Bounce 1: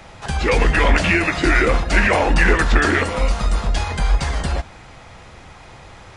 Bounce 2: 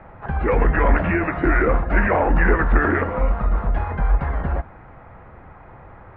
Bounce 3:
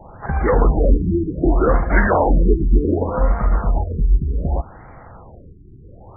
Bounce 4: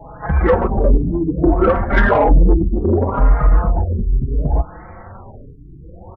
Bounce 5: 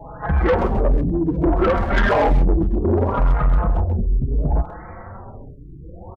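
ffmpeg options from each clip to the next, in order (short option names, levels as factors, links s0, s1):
-af "lowpass=f=1700:w=0.5412,lowpass=f=1700:w=1.3066,volume=0.891"
-af "afftfilt=real='re*lt(b*sr/1024,390*pow(2400/390,0.5+0.5*sin(2*PI*0.66*pts/sr)))':imag='im*lt(b*sr/1024,390*pow(2400/390,0.5+0.5*sin(2*PI*0.66*pts/sr)))':win_size=1024:overlap=0.75,volume=1.41"
-filter_complex "[0:a]acontrast=82,asplit=2[s0][s1];[s1]adelay=4.4,afreqshift=0.9[s2];[s0][s2]amix=inputs=2:normalize=1"
-filter_complex "[0:a]asoftclip=type=tanh:threshold=0.266,asplit=2[s0][s1];[s1]adelay=130,highpass=300,lowpass=3400,asoftclip=type=hard:threshold=0.0891,volume=0.316[s2];[s0][s2]amix=inputs=2:normalize=0"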